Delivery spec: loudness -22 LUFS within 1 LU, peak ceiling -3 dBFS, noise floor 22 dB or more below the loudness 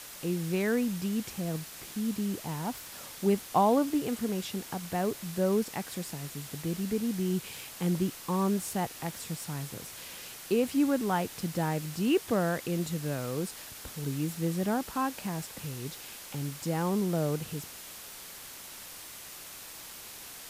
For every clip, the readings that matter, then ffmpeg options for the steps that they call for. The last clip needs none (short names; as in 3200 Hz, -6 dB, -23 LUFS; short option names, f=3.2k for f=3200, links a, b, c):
noise floor -46 dBFS; noise floor target -54 dBFS; loudness -32.0 LUFS; peak -13.5 dBFS; loudness target -22.0 LUFS
-> -af "afftdn=nr=8:nf=-46"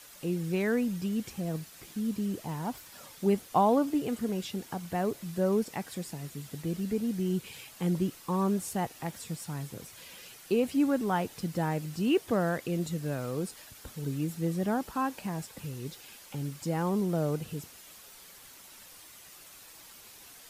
noise floor -52 dBFS; noise floor target -54 dBFS
-> -af "afftdn=nr=6:nf=-52"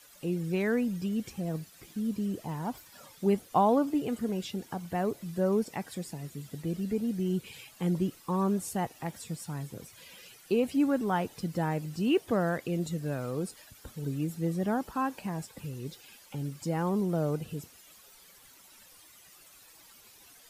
noise floor -56 dBFS; loudness -32.0 LUFS; peak -13.5 dBFS; loudness target -22.0 LUFS
-> -af "volume=10dB"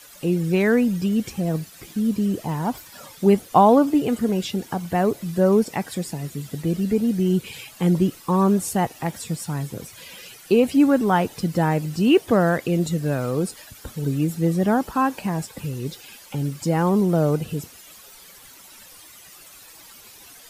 loudness -22.0 LUFS; peak -3.5 dBFS; noise floor -46 dBFS